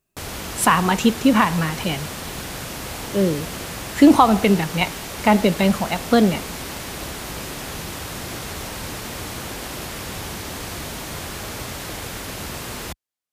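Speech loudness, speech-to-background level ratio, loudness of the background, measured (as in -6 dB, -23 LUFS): -18.5 LUFS, 12.0 dB, -30.5 LUFS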